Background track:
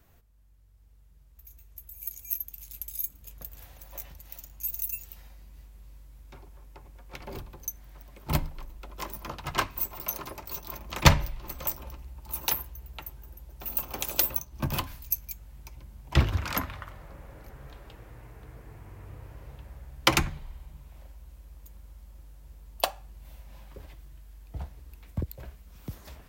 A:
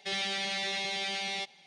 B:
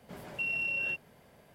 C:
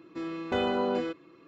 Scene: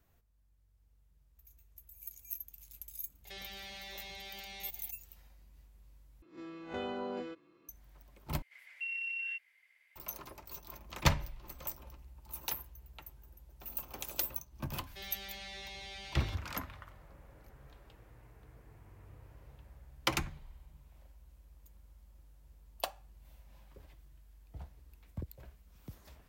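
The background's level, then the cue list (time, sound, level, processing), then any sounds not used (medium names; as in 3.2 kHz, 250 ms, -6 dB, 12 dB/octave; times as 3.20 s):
background track -10 dB
3.25 s: add A -1 dB + compression 3:1, threshold -48 dBFS
6.22 s: replace with C -11.5 dB + reverse spectral sustain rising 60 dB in 0.33 s
8.42 s: replace with B -13 dB + resonant high-pass 2.1 kHz, resonance Q 11
14.90 s: add A -13.5 dB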